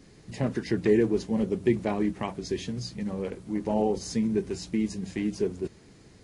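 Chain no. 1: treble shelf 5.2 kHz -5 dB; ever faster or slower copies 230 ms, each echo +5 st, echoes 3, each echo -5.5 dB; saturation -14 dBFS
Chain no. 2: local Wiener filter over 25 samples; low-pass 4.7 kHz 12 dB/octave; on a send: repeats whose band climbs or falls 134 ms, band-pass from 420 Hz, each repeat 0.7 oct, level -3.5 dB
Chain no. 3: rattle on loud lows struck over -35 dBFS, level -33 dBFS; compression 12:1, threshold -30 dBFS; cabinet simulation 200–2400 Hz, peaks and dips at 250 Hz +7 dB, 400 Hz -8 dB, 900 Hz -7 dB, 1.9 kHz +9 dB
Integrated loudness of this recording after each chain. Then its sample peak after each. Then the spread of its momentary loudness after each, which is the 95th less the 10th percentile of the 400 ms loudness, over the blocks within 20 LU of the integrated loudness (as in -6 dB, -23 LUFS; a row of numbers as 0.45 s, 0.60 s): -28.5 LUFS, -28.0 LUFS, -37.5 LUFS; -14.5 dBFS, -9.5 dBFS, -21.0 dBFS; 8 LU, 11 LU, 5 LU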